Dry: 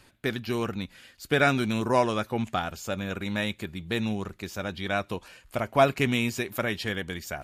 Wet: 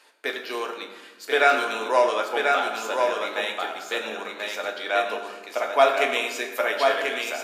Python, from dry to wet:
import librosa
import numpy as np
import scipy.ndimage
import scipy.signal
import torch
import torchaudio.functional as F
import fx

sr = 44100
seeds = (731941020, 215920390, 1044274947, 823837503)

p1 = scipy.signal.sosfilt(scipy.signal.butter(4, 430.0, 'highpass', fs=sr, output='sos'), x)
p2 = fx.high_shelf(p1, sr, hz=10000.0, db=-7.0)
p3 = p2 + fx.echo_single(p2, sr, ms=1038, db=-4.0, dry=0)
p4 = fx.rev_fdn(p3, sr, rt60_s=1.2, lf_ratio=1.55, hf_ratio=0.7, size_ms=67.0, drr_db=2.5)
y = F.gain(torch.from_numpy(p4), 2.5).numpy()